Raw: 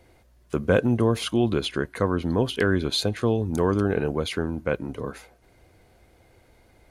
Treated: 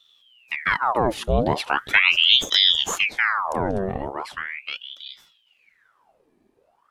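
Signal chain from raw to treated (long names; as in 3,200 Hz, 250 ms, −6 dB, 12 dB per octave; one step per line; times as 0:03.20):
source passing by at 0:02.14, 14 m/s, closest 8.5 metres
low-shelf EQ 160 Hz +11 dB
ring modulator whose carrier an LFO sweeps 1,900 Hz, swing 85%, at 0.39 Hz
level +5.5 dB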